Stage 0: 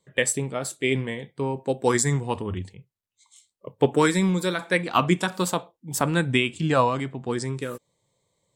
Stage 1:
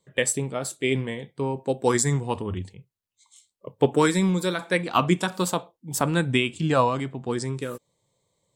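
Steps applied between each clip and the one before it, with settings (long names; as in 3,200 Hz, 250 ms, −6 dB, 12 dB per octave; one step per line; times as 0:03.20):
parametric band 1,900 Hz −2.5 dB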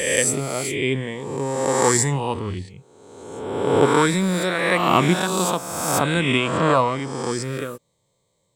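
peak hold with a rise ahead of every peak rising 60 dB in 1.41 s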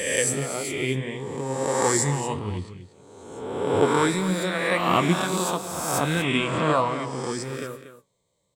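flanger 1.6 Hz, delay 9.3 ms, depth 6.9 ms, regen +54%
single-tap delay 237 ms −12 dB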